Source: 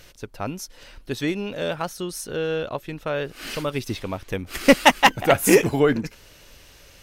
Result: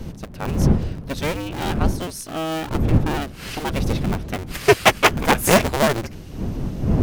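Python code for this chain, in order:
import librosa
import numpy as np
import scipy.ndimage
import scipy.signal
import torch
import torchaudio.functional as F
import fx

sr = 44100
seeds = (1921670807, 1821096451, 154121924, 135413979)

y = fx.cycle_switch(x, sr, every=2, mode='inverted')
y = fx.dmg_wind(y, sr, seeds[0], corner_hz=180.0, level_db=-24.0)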